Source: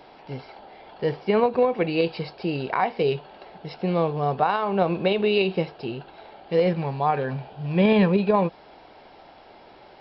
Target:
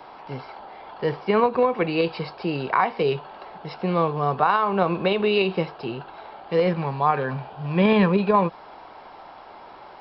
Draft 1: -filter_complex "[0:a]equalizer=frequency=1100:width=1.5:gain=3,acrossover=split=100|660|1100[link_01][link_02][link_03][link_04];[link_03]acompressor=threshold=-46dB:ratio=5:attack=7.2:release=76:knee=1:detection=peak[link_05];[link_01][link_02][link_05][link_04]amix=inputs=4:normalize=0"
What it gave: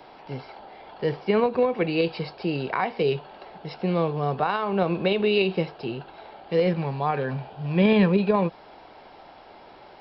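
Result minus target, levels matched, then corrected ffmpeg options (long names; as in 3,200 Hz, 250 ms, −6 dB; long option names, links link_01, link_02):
1,000 Hz band −4.0 dB
-filter_complex "[0:a]equalizer=frequency=1100:width=1.5:gain=12,acrossover=split=100|660|1100[link_01][link_02][link_03][link_04];[link_03]acompressor=threshold=-46dB:ratio=5:attack=7.2:release=76:knee=1:detection=peak[link_05];[link_01][link_02][link_05][link_04]amix=inputs=4:normalize=0"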